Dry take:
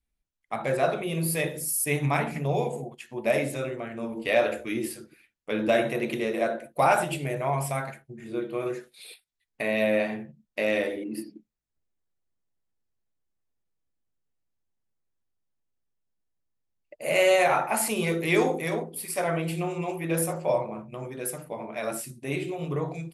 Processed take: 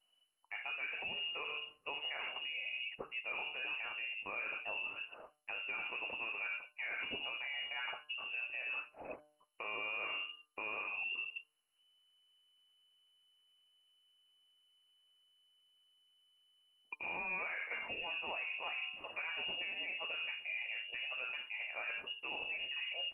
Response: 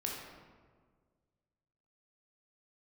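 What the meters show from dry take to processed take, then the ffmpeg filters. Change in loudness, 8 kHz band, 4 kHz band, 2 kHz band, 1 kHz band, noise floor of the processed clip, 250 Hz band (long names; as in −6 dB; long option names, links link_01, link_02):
−12.5 dB, below −40 dB, −1.5 dB, −6.0 dB, −18.0 dB, −77 dBFS, −30.5 dB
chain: -af "lowpass=frequency=2600:width_type=q:width=0.5098,lowpass=frequency=2600:width_type=q:width=0.6013,lowpass=frequency=2600:width_type=q:width=0.9,lowpass=frequency=2600:width_type=q:width=2.563,afreqshift=-3000,bandreject=frequency=150.1:width_type=h:width=4,bandreject=frequency=300.2:width_type=h:width=4,bandreject=frequency=450.3:width_type=h:width=4,bandreject=frequency=600.4:width_type=h:width=4,bandreject=frequency=750.5:width_type=h:width=4,bandreject=frequency=900.6:width_type=h:width=4,bandreject=frequency=1050.7:width_type=h:width=4,bandreject=frequency=1200.8:width_type=h:width=4,bandreject=frequency=1350.9:width_type=h:width=4,bandreject=frequency=1501:width_type=h:width=4,bandreject=frequency=1651.1:width_type=h:width=4,areverse,acompressor=threshold=-35dB:ratio=16,areverse,alimiter=level_in=14dB:limit=-24dB:level=0:latency=1:release=405,volume=-14dB,aemphasis=mode=reproduction:type=75kf,acontrast=25,volume=4dB" -ar 44100 -c:a mp2 -b:a 192k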